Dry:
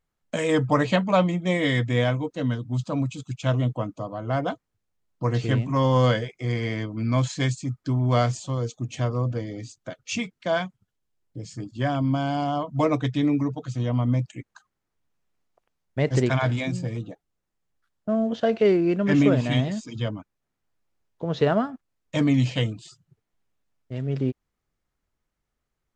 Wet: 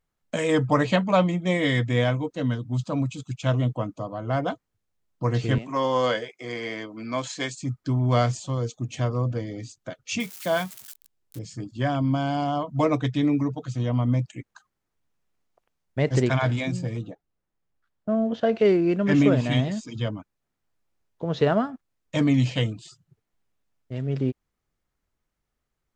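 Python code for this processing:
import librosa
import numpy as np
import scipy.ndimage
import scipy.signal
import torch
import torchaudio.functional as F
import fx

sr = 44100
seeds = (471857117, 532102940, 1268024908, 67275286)

y = fx.highpass(x, sr, hz=330.0, slope=12, at=(5.58, 7.62))
y = fx.crossing_spikes(y, sr, level_db=-30.0, at=(10.2, 11.39))
y = fx.high_shelf(y, sr, hz=fx.line((17.09, 3500.0), (18.54, 5800.0)), db=-10.5, at=(17.09, 18.54), fade=0.02)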